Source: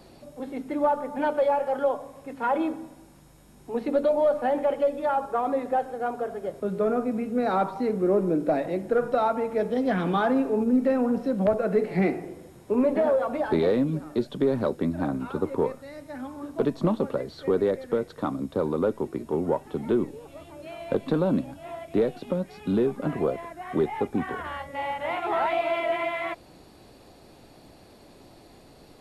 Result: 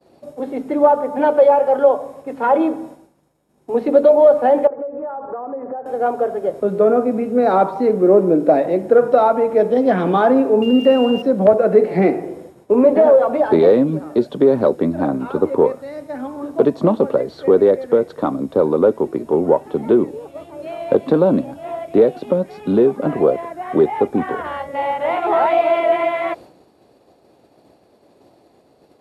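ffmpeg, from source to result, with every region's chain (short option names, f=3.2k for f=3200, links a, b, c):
-filter_complex "[0:a]asettb=1/sr,asplit=3[a][b][c];[a]atrim=end=4.674[d];[b]atrim=start=4.67:end=5.86,asetpts=PTS-STARTPTS,afade=t=in:d=0.004:c=qsin,afade=t=out:st=1.186:d=0.004:c=qsin,lowpass=f=1.6k:w=0.5412,lowpass=f=1.6k:w=1.3066,acompressor=threshold=-34dB:ratio=20:attack=3.2:release=140:knee=1:detection=peak[e];[c]atrim=start=5.856[f];[d][e]acrossfade=d=0.004:c1=hsin:c2=qsin[g];[g][f]acrossfade=d=0.004:c1=qsin:c2=hsin,asettb=1/sr,asplit=3[h][i][j];[h]atrim=end=10.624[k];[i]atrim=start=10.62:end=11.22,asetpts=PTS-STARTPTS,afade=t=in:d=0.004:c=qsin,afade=t=out:st=0.596:d=0.004:c=qsin,aeval=exprs='val(0)+0.0251*sin(2*PI*2800*n/s)':c=same,aeval=exprs='sgn(val(0))*max(abs(val(0))-0.00335,0)':c=same[l];[j]atrim=start=11.216[m];[k][l]acrossfade=d=0.004:c1=hsin:c2=qsin[n];[n][m]acrossfade=d=0.004:c1=qsin:c2=hsin,highpass=72,agate=range=-33dB:threshold=-43dB:ratio=3:detection=peak,equalizer=f=520:w=0.57:g=9.5,volume=2.5dB"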